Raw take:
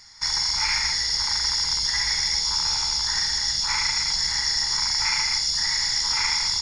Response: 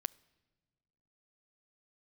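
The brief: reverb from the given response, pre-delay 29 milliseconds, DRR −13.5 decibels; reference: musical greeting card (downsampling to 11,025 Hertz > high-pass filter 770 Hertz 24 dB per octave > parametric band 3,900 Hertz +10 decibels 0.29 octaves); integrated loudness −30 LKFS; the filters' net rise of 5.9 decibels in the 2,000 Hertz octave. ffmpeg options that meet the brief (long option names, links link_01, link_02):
-filter_complex "[0:a]equalizer=frequency=2000:width_type=o:gain=6,asplit=2[link_01][link_02];[1:a]atrim=start_sample=2205,adelay=29[link_03];[link_02][link_03]afir=irnorm=-1:irlink=0,volume=15dB[link_04];[link_01][link_04]amix=inputs=2:normalize=0,aresample=11025,aresample=44100,highpass=frequency=770:width=0.5412,highpass=frequency=770:width=1.3066,equalizer=frequency=3900:width_type=o:width=0.29:gain=10,volume=-23dB"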